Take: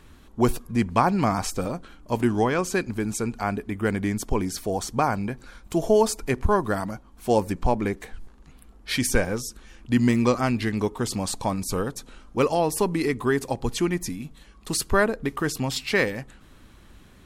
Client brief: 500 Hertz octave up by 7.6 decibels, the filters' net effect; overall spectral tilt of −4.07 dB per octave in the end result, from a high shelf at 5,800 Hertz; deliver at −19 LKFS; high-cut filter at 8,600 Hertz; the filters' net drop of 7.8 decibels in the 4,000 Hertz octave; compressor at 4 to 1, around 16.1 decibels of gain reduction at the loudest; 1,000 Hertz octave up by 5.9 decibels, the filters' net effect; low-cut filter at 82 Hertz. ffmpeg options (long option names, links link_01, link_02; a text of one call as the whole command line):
ffmpeg -i in.wav -af "highpass=82,lowpass=8600,equalizer=frequency=500:width_type=o:gain=8.5,equalizer=frequency=1000:width_type=o:gain=5,equalizer=frequency=4000:width_type=o:gain=-8,highshelf=frequency=5800:gain=-6,acompressor=threshold=-28dB:ratio=4,volume=13dB" out.wav